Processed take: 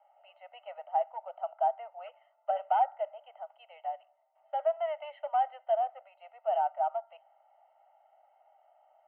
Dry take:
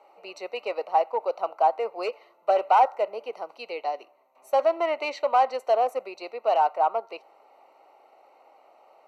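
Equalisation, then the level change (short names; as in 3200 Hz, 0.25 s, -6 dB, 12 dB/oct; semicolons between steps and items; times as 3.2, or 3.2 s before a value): elliptic high-pass 620 Hz, stop band 40 dB; rippled Chebyshev low-pass 3200 Hz, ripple 6 dB; fixed phaser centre 1600 Hz, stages 8; -4.5 dB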